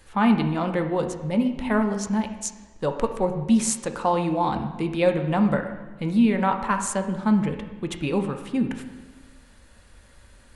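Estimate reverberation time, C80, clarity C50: 1.2 s, 10.0 dB, 8.0 dB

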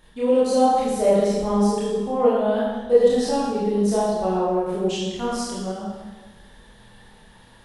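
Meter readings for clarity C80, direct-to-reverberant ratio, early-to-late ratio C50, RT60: 1.0 dB, −8.5 dB, −1.5 dB, 1.3 s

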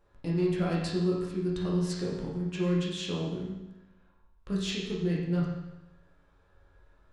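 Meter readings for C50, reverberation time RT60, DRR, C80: 1.0 dB, 0.95 s, −5.0 dB, 4.0 dB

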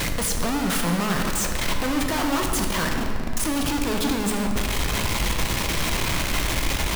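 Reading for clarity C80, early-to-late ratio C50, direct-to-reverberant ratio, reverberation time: 5.0 dB, 4.0 dB, 2.0 dB, 2.5 s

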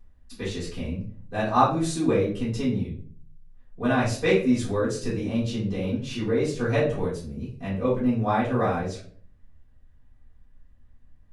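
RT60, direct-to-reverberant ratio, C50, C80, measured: 0.50 s, −11.5 dB, 5.5 dB, 10.0 dB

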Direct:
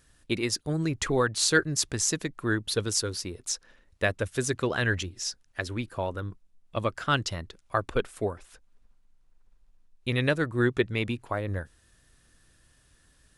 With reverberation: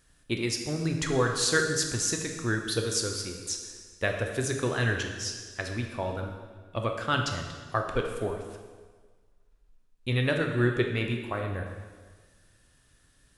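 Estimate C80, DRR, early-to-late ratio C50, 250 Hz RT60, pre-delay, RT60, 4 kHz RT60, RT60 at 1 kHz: 6.5 dB, 2.5 dB, 4.5 dB, 1.4 s, 5 ms, 1.5 s, 1.4 s, 1.5 s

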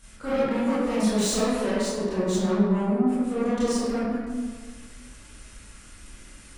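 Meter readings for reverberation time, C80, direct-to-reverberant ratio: 1.5 s, 0.0 dB, −12.5 dB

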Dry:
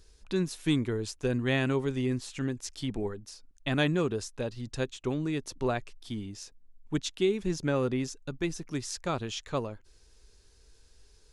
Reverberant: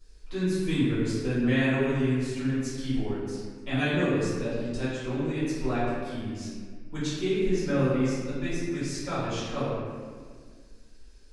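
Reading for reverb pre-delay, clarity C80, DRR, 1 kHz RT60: 3 ms, 0.0 dB, −12.5 dB, 1.6 s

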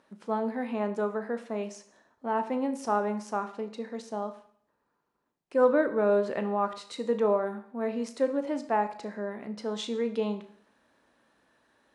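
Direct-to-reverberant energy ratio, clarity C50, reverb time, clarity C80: 8.5 dB, 12.5 dB, 0.60 s, 16.0 dB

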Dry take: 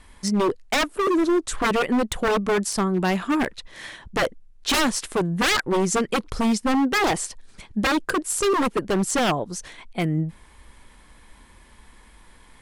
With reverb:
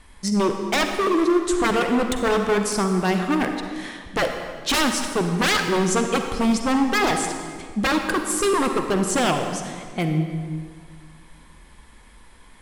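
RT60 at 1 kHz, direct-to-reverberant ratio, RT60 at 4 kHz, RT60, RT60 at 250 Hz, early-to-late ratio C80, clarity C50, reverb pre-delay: 1.8 s, 5.0 dB, 1.4 s, 1.8 s, 2.0 s, 6.5 dB, 5.5 dB, 40 ms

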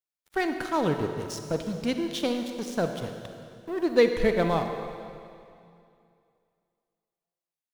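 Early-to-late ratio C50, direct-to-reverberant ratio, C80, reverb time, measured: 6.0 dB, 6.0 dB, 7.0 dB, 2.5 s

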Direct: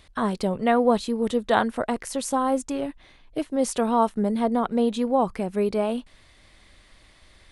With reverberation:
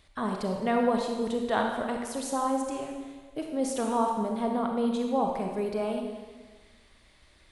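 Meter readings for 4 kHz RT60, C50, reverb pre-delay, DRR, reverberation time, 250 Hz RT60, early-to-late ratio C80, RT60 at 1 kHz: 1.4 s, 3.0 dB, 30 ms, 2.0 dB, 1.4 s, 1.5 s, 5.0 dB, 1.4 s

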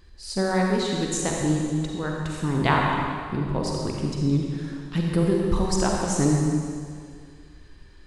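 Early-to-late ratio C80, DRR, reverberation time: 1.0 dB, −1.0 dB, 2.1 s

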